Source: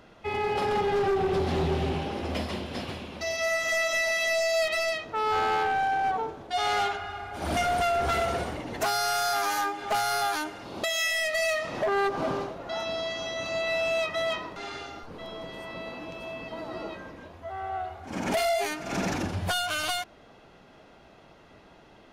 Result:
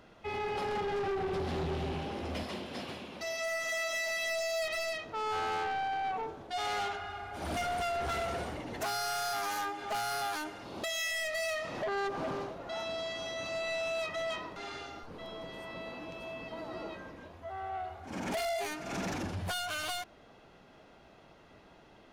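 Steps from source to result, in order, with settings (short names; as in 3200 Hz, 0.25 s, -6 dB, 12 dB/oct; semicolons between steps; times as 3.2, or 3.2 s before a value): 2.43–4.12 Bessel high-pass 160 Hz, order 2; soft clip -26.5 dBFS, distortion -15 dB; gain -4 dB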